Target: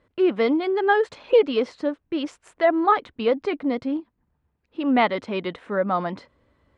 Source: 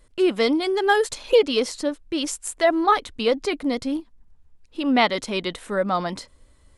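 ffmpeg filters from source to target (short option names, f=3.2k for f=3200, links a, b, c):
-af "highpass=100,lowpass=2.2k"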